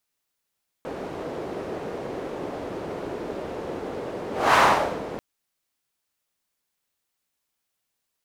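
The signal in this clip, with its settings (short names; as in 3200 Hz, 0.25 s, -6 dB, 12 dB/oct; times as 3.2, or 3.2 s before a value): whoosh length 4.34 s, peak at 3.71, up 0.27 s, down 0.51 s, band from 450 Hz, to 1100 Hz, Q 1.6, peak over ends 16.5 dB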